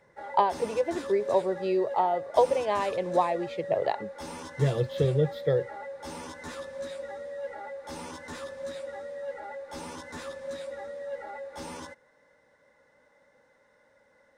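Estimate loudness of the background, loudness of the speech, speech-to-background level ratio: −39.0 LKFS, −27.5 LKFS, 11.5 dB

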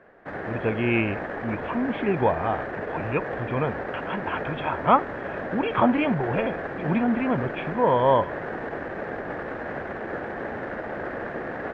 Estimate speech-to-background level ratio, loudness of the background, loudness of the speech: 7.0 dB, −32.5 LKFS, −25.5 LKFS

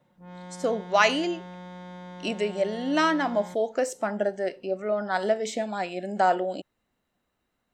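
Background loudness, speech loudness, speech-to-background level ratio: −42.5 LKFS, −26.5 LKFS, 16.0 dB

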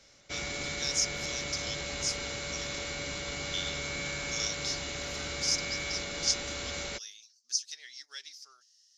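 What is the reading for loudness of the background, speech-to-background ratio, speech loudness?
−35.0 LKFS, 0.5 dB, −34.5 LKFS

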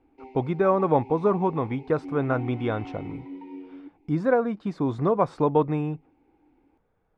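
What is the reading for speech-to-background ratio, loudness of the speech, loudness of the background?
16.0 dB, −25.0 LKFS, −41.0 LKFS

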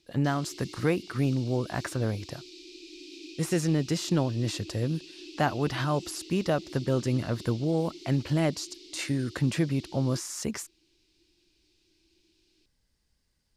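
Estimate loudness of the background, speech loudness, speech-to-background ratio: −45.5 LKFS, −29.5 LKFS, 16.0 dB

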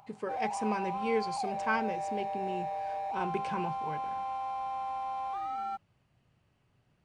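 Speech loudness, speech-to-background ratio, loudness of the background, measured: −36.0 LKFS, 0.0 dB, −36.0 LKFS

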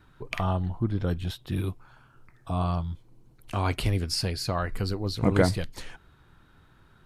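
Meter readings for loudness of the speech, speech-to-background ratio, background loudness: −29.0 LKFS, 9.5 dB, −38.5 LKFS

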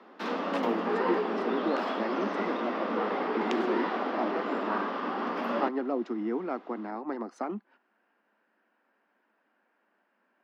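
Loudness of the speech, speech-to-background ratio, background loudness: −35.0 LKFS, −3.5 dB, −31.5 LKFS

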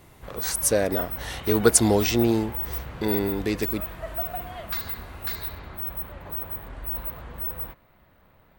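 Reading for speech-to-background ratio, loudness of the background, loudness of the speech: 7.5 dB, −31.5 LKFS, −24.0 LKFS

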